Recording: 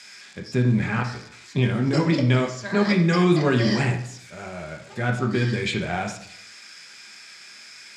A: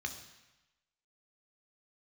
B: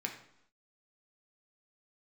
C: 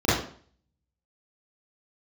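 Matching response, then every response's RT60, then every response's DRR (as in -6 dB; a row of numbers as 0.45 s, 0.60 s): B; 1.0 s, 0.75 s, 0.50 s; 4.5 dB, 1.5 dB, -13.0 dB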